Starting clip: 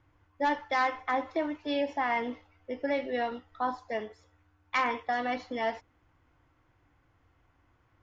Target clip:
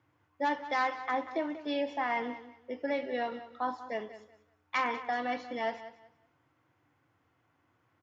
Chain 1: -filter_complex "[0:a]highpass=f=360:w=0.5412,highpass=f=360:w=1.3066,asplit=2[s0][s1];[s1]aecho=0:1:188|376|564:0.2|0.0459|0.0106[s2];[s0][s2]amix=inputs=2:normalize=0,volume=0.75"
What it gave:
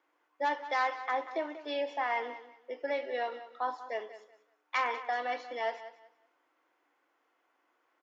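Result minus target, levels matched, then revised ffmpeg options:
125 Hz band -18.5 dB
-filter_complex "[0:a]highpass=f=110:w=0.5412,highpass=f=110:w=1.3066,asplit=2[s0][s1];[s1]aecho=0:1:188|376|564:0.2|0.0459|0.0106[s2];[s0][s2]amix=inputs=2:normalize=0,volume=0.75"

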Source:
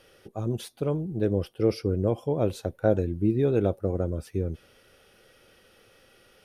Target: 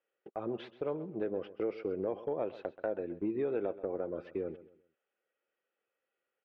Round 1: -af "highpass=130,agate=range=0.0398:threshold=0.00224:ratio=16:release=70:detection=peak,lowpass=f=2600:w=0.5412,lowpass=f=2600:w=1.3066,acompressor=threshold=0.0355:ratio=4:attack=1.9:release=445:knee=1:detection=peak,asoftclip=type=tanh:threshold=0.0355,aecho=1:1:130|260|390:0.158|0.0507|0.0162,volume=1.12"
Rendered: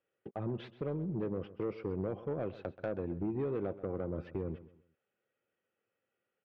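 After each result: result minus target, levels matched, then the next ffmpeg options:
125 Hz band +11.5 dB; saturation: distortion +15 dB
-af "highpass=390,agate=range=0.0398:threshold=0.00224:ratio=16:release=70:detection=peak,lowpass=f=2600:w=0.5412,lowpass=f=2600:w=1.3066,acompressor=threshold=0.0355:ratio=4:attack=1.9:release=445:knee=1:detection=peak,asoftclip=type=tanh:threshold=0.0355,aecho=1:1:130|260|390:0.158|0.0507|0.0162,volume=1.12"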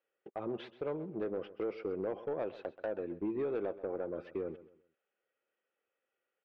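saturation: distortion +14 dB
-af "highpass=390,agate=range=0.0398:threshold=0.00224:ratio=16:release=70:detection=peak,lowpass=f=2600:w=0.5412,lowpass=f=2600:w=1.3066,acompressor=threshold=0.0355:ratio=4:attack=1.9:release=445:knee=1:detection=peak,asoftclip=type=tanh:threshold=0.1,aecho=1:1:130|260|390:0.158|0.0507|0.0162,volume=1.12"

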